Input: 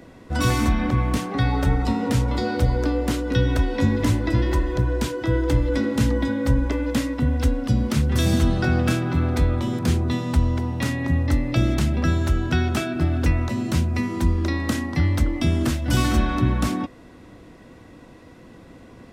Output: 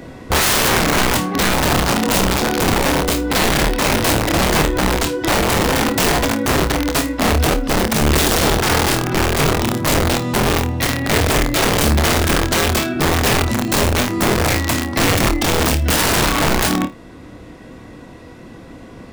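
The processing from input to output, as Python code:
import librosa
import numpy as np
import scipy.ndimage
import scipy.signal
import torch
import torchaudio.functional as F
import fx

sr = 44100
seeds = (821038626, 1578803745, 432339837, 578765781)

y = fx.rider(x, sr, range_db=10, speed_s=2.0)
y = (np.mod(10.0 ** (16.5 / 20.0) * y + 1.0, 2.0) - 1.0) / 10.0 ** (16.5 / 20.0)
y = fx.room_flutter(y, sr, wall_m=4.6, rt60_s=0.2)
y = y * librosa.db_to_amplitude(5.5)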